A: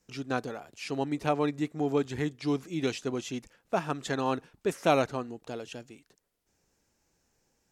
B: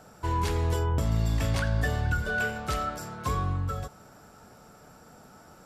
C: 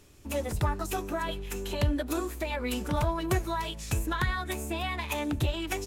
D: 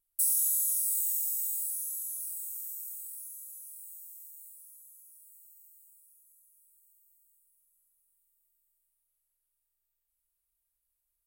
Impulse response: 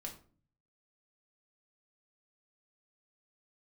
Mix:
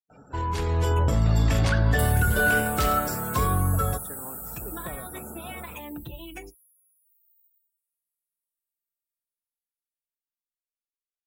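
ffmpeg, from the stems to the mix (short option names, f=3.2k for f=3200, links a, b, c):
-filter_complex "[0:a]acompressor=threshold=-30dB:ratio=2.5,volume=-18dB[a];[1:a]alimiter=limit=-22dB:level=0:latency=1:release=20,adelay=100,volume=-1dB,asplit=2[b][c];[c]volume=-11dB[d];[2:a]aecho=1:1:5.8:0.42,acompressor=threshold=-28dB:ratio=6,adelay=650,volume=-16.5dB,asplit=3[e][f][g];[e]atrim=end=2.63,asetpts=PTS-STARTPTS,afade=t=out:st=2.626:d=0.004:c=hsin[h];[f]atrim=start=2.63:end=4.41,asetpts=PTS-STARTPTS,volume=0[i];[g]atrim=start=4.41,asetpts=PTS-STARTPTS,afade=t=in:d=0.004:c=hsin[j];[h][i][j]concat=n=3:v=0:a=1,asplit=2[k][l];[l]volume=-4.5dB[m];[3:a]acompressor=threshold=-35dB:ratio=6,adelay=1800,volume=-5dB[n];[4:a]atrim=start_sample=2205[o];[d][m]amix=inputs=2:normalize=0[p];[p][o]afir=irnorm=-1:irlink=0[q];[a][b][k][n][q]amix=inputs=5:normalize=0,afftdn=nr=27:nf=-53,dynaudnorm=f=320:g=5:m=7.5dB"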